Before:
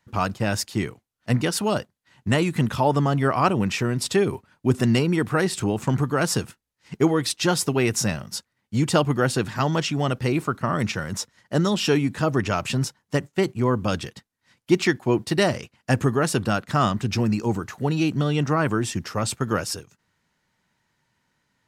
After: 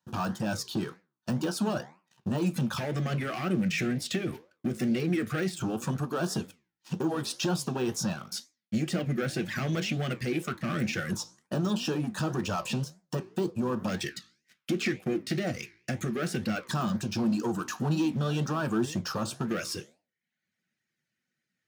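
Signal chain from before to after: reverb removal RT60 0.77 s; de-esser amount 90%; limiter -16 dBFS, peak gain reduction 8.5 dB; compressor, threshold -29 dBFS, peak gain reduction 9 dB; sample leveller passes 3; LFO notch square 0.18 Hz 960–2100 Hz; flange 2 Hz, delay 9.6 ms, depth 9.6 ms, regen +80%; reverb, pre-delay 3 ms, DRR 12 dB

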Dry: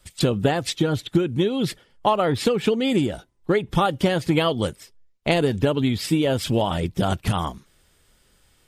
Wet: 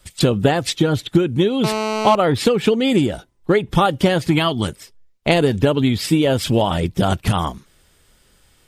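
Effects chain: 1.64–2.15 GSM buzz -26 dBFS; 4.28–4.68 bell 510 Hz -14.5 dB 0.31 oct; gain +4.5 dB

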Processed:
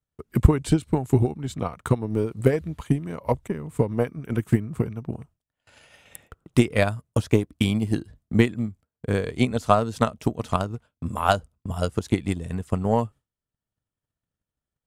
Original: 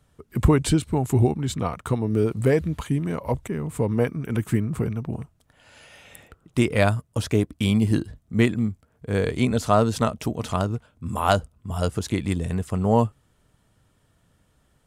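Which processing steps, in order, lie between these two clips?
transient shaper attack +11 dB, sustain -2 dB; gate with hold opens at -38 dBFS; gain -6 dB

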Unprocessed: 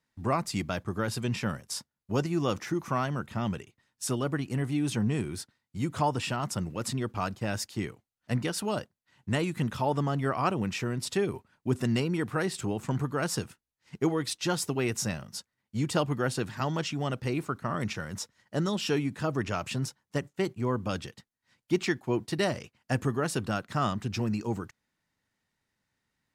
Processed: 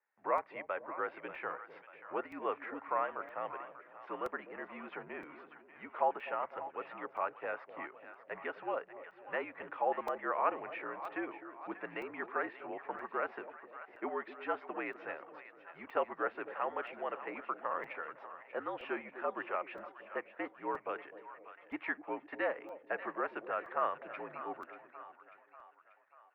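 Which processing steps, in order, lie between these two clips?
mistuned SSB -63 Hz 520–2300 Hz; split-band echo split 660 Hz, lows 0.252 s, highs 0.589 s, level -12 dB; crackling interface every 0.97 s, samples 128, zero, from 0.38; gain -2.5 dB

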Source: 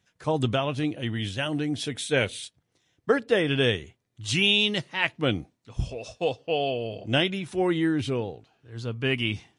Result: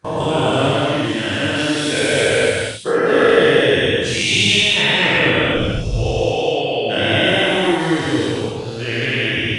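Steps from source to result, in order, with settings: spectral dilation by 0.48 s; non-linear reverb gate 0.31 s flat, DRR -4 dB; gate with hold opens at -16 dBFS; gain -3.5 dB

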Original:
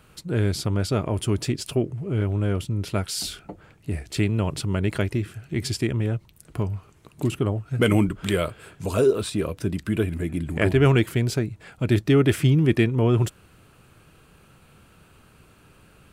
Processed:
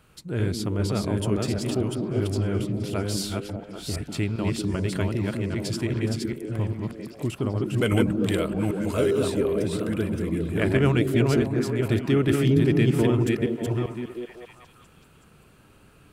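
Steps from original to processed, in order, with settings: reverse delay 0.396 s, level -2.5 dB; delay with a stepping band-pass 0.197 s, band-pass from 230 Hz, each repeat 0.7 oct, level -0.5 dB; gain -4 dB

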